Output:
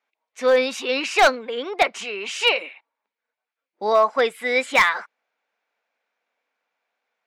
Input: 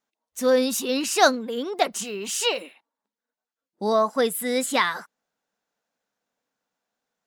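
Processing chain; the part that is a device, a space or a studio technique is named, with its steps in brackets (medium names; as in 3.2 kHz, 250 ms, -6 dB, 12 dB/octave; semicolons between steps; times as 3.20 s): megaphone (band-pass 480–3500 Hz; peaking EQ 2.3 kHz +10 dB 0.34 oct; hard clipper -14 dBFS, distortion -14 dB); trim +5 dB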